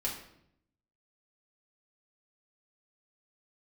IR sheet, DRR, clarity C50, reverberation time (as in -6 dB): -4.5 dB, 6.0 dB, 0.70 s